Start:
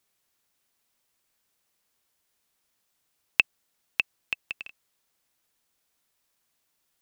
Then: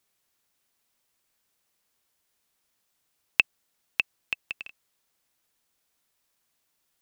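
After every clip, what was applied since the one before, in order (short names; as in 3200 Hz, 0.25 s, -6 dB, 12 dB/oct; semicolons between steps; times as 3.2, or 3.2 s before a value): nothing audible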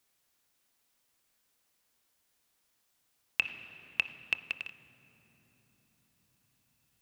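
on a send at -13.5 dB: reverb RT60 4.3 s, pre-delay 3 ms; on the sum: limiter -10.5 dBFS, peak gain reduction 8.5 dB; de-hum 87.42 Hz, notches 15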